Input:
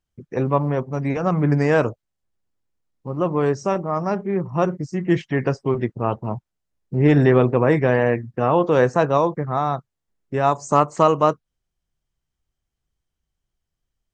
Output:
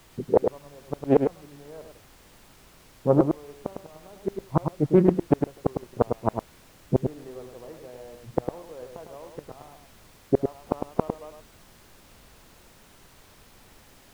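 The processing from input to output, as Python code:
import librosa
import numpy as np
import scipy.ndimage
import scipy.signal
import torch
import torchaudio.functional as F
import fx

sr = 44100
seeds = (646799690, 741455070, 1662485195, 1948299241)

y = scipy.ndimage.median_filter(x, 25, mode='constant')
y = fx.peak_eq(y, sr, hz=560.0, db=14.5, octaves=2.6)
y = fx.env_lowpass(y, sr, base_hz=330.0, full_db=-4.0)
y = fx.gate_flip(y, sr, shuts_db=-6.0, range_db=-38)
y = fx.dmg_noise_colour(y, sr, seeds[0], colour='pink', level_db=-54.0)
y = y + 10.0 ** (-6.0 / 20.0) * np.pad(y, (int(104 * sr / 1000.0), 0))[:len(y)]
y = fx.doppler_dist(y, sr, depth_ms=0.27)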